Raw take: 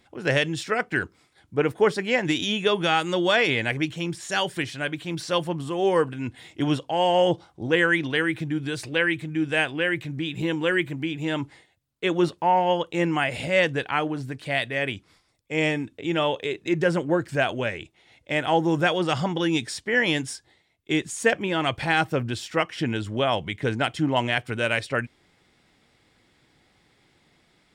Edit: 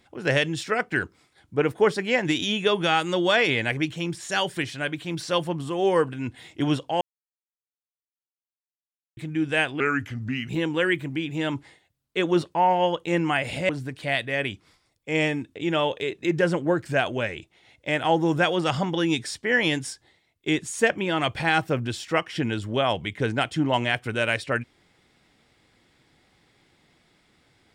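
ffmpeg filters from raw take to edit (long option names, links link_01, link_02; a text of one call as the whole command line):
ffmpeg -i in.wav -filter_complex "[0:a]asplit=6[link_01][link_02][link_03][link_04][link_05][link_06];[link_01]atrim=end=7.01,asetpts=PTS-STARTPTS,afade=type=out:start_time=7.006:duration=0.004:curve=hsin[link_07];[link_02]atrim=start=7.01:end=9.17,asetpts=PTS-STARTPTS,volume=0[link_08];[link_03]atrim=start=9.17:end=9.804,asetpts=PTS-STARTPTS,afade=type=in:duration=0.004:curve=hsin[link_09];[link_04]atrim=start=9.8:end=10.36,asetpts=PTS-STARTPTS,asetrate=35721,aresample=44100[link_10];[link_05]atrim=start=10.356:end=13.562[link_11];[link_06]atrim=start=14.118[link_12];[link_07][link_08][link_09]concat=n=3:v=0:a=1[link_13];[link_13][link_10]acrossfade=duration=0.004:curve1=hsin:curve2=hsin[link_14];[link_14][link_11]acrossfade=duration=0.004:curve1=hsin:curve2=hsin[link_15];[link_15][link_12]acrossfade=duration=0.004:curve1=hsin:curve2=hsin" out.wav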